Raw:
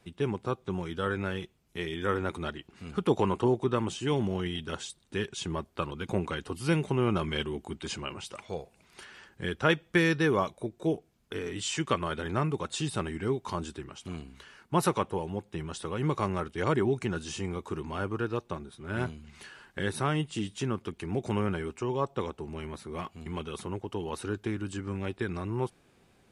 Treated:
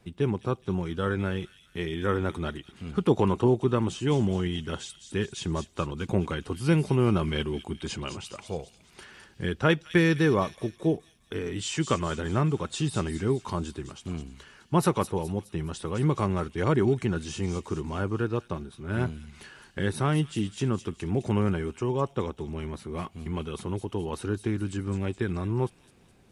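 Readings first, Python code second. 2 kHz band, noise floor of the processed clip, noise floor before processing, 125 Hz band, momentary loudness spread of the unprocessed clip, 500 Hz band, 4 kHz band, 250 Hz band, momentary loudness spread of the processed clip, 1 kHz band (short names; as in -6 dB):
+0.5 dB, -59 dBFS, -65 dBFS, +5.5 dB, 13 LU, +2.5 dB, +0.5 dB, +4.0 dB, 13 LU, +0.5 dB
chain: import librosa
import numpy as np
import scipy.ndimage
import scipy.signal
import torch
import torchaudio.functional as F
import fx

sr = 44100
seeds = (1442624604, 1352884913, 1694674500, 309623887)

y = fx.low_shelf(x, sr, hz=350.0, db=6.5)
y = fx.echo_wet_highpass(y, sr, ms=209, feedback_pct=49, hz=4100.0, wet_db=-6.0)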